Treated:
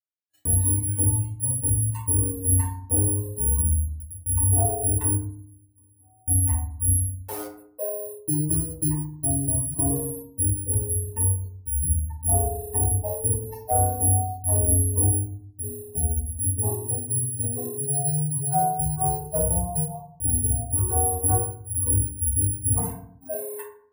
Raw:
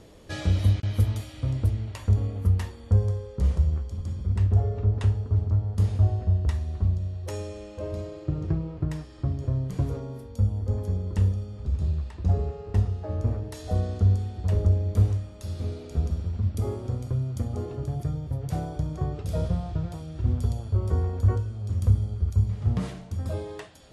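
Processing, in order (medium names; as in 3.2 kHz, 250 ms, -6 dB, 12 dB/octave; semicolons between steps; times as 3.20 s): 11.03–11.46 s: bass shelf 68 Hz -7 dB; echo that smears into a reverb 461 ms, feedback 52%, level -14.5 dB; spectral noise reduction 29 dB; 7.13–7.56 s: word length cut 6-bit, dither none; gate -44 dBFS, range -41 dB; careless resampling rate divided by 4×, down filtered, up zero stuff; peaking EQ 730 Hz +14.5 dB 0.72 oct; saturation -8 dBFS, distortion -11 dB; 5.15–6.28 s: compression 16:1, threshold -51 dBFS, peak gain reduction 38 dB; FDN reverb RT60 0.57 s, low-frequency decay 1.55×, high-frequency decay 0.5×, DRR -3.5 dB; trim -6 dB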